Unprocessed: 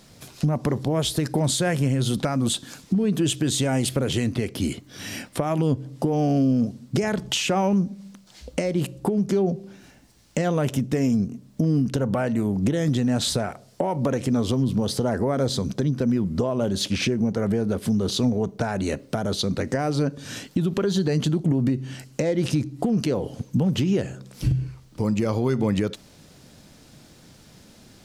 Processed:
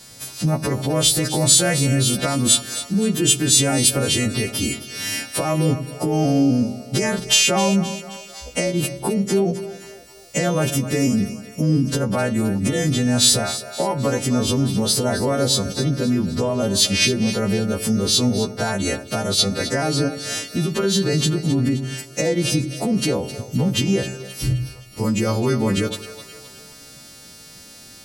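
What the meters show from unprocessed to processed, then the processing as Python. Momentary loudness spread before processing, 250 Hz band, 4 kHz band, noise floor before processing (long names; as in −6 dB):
6 LU, +2.0 dB, +10.0 dB, −52 dBFS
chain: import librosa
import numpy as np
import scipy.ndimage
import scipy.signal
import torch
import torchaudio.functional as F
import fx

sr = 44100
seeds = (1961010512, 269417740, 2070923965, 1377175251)

y = fx.freq_snap(x, sr, grid_st=2)
y = fx.echo_split(y, sr, split_hz=440.0, low_ms=89, high_ms=262, feedback_pct=52, wet_db=-13)
y = y * 10.0 ** (3.0 / 20.0)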